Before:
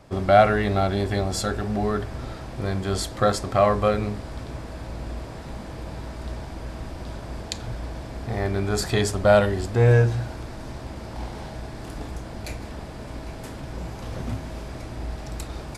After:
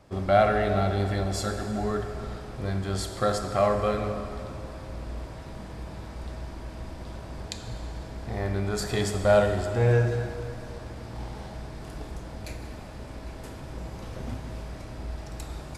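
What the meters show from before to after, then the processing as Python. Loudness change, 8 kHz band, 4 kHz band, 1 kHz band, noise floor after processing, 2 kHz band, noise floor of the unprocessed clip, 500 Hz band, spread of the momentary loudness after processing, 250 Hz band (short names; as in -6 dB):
-4.0 dB, -4.5 dB, -4.5 dB, -4.5 dB, -41 dBFS, -4.5 dB, -37 dBFS, -3.5 dB, 18 LU, -4.0 dB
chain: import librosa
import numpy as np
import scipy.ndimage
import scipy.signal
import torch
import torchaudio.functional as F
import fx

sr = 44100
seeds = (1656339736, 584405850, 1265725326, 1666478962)

y = fx.rev_plate(x, sr, seeds[0], rt60_s=2.7, hf_ratio=0.8, predelay_ms=0, drr_db=5.0)
y = y * librosa.db_to_amplitude(-5.5)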